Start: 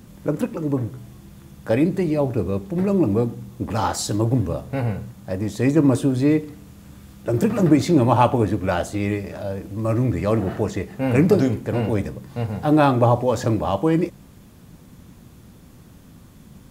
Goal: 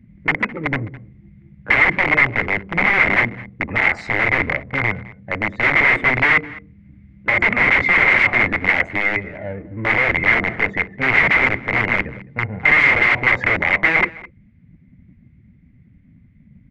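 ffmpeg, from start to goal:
-filter_complex "[0:a]afftdn=nr=19:nf=-37,acrossover=split=1200[a][b];[a]adynamicsmooth=sensitivity=6:basefreq=650[c];[c][b]amix=inputs=2:normalize=0,aeval=exprs='(mod(6.68*val(0)+1,2)-1)/6.68':c=same,lowpass=f=2.1k:t=q:w=15,asplit=2[d][e];[e]adelay=209.9,volume=-20dB,highshelf=f=4k:g=-4.72[f];[d][f]amix=inputs=2:normalize=0,volume=-1dB"

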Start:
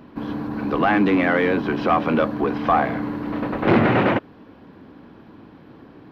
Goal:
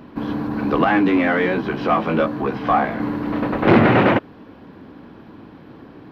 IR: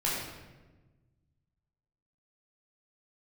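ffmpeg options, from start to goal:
-filter_complex "[0:a]asettb=1/sr,asplit=3[a][b][c];[a]atrim=end=0.844[d];[b]atrim=start=0.84:end=3,asetpts=PTS-STARTPTS,afade=t=in:d=0.004:c=qsin,afade=t=out:st=2.156:d=0.004:c=qsin,flanger=delay=15:depth=4:speed=1.2[e];[c]atrim=start=2.996[f];[d][e]acrossfade=d=0.004:c1=hsin:c2=qsin[g];[g][f]acrossfade=d=0.004:c1=qsin:c2=hsin,volume=3.5dB"

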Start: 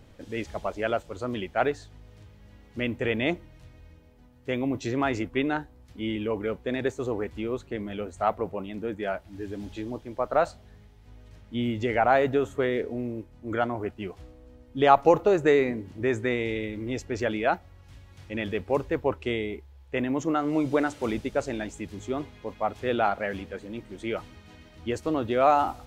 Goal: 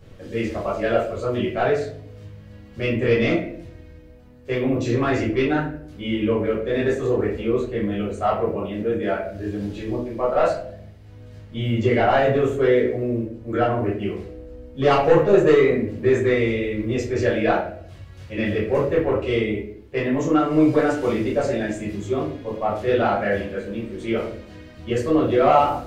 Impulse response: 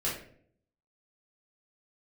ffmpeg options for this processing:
-filter_complex "[0:a]asoftclip=type=tanh:threshold=-15dB[a];[1:a]atrim=start_sample=2205[b];[a][b]afir=irnorm=-1:irlink=0"

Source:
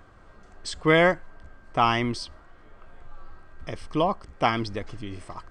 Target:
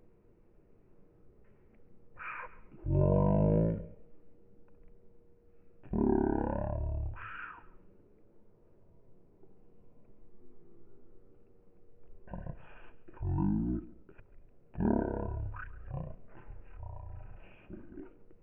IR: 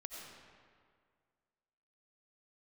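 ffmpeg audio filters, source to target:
-filter_complex "[0:a]asetrate=13186,aresample=44100,asplit=2[a][b];[1:a]atrim=start_sample=2205,atrim=end_sample=4410,adelay=138[c];[b][c]afir=irnorm=-1:irlink=0,volume=-12.5dB[d];[a][d]amix=inputs=2:normalize=0,volume=-9dB"

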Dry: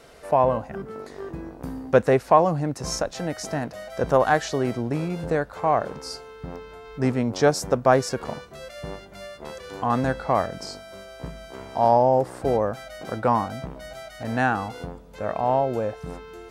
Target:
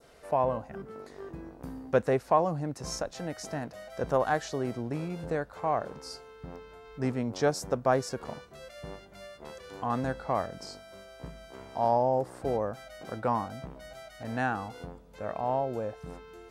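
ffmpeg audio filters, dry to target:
-af "adynamicequalizer=threshold=0.0141:dfrequency=2400:dqfactor=1:tfrequency=2400:tqfactor=1:attack=5:release=100:ratio=0.375:range=2:mode=cutabove:tftype=bell,volume=-7.5dB"

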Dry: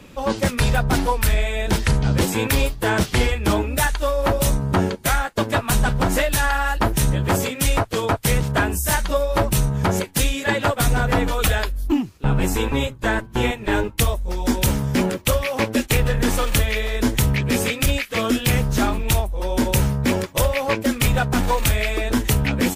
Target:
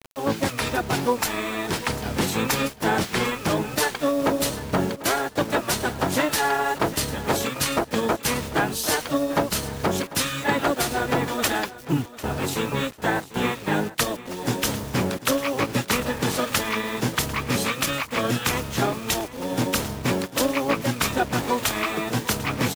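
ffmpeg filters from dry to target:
-filter_complex "[0:a]highpass=270,asplit=3[a][b][c];[b]asetrate=22050,aresample=44100,atempo=2,volume=0dB[d];[c]asetrate=52444,aresample=44100,atempo=0.840896,volume=-15dB[e];[a][d][e]amix=inputs=3:normalize=0,acrusher=bits=5:mix=0:aa=0.000001,asplit=2[f][g];[g]aecho=0:1:746|1492:0.141|0.0297[h];[f][h]amix=inputs=2:normalize=0,volume=-4dB"

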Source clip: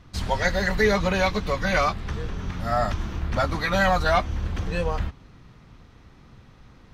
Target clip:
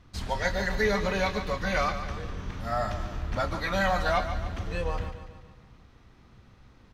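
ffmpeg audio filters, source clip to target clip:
-filter_complex "[0:a]equalizer=f=150:t=o:w=0.43:g=-3.5,asplit=2[a][b];[b]adelay=31,volume=-13.5dB[c];[a][c]amix=inputs=2:normalize=0,aecho=1:1:144|288|432|576|720|864:0.316|0.161|0.0823|0.0419|0.0214|0.0109,volume=-5.5dB"

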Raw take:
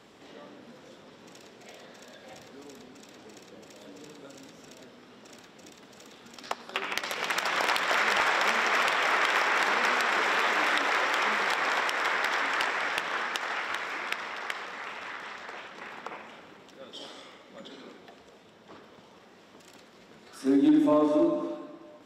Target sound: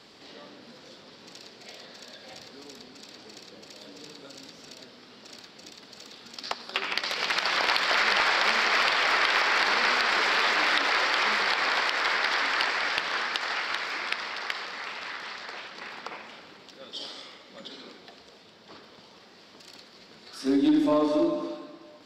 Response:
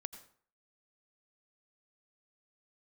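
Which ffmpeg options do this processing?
-filter_complex "[0:a]equalizer=f=4.6k:w=3:g=12.5,acrossover=split=3700[a][b];[a]crystalizer=i=3:c=0[c];[b]alimiter=level_in=3.5dB:limit=-24dB:level=0:latency=1:release=52,volume=-3.5dB[d];[c][d]amix=inputs=2:normalize=0,acontrast=37,aeval=exprs='0.708*(cos(1*acos(clip(val(0)/0.708,-1,1)))-cos(1*PI/2))+0.00447*(cos(6*acos(clip(val(0)/0.708,-1,1)))-cos(6*PI/2))':c=same,volume=-6dB"

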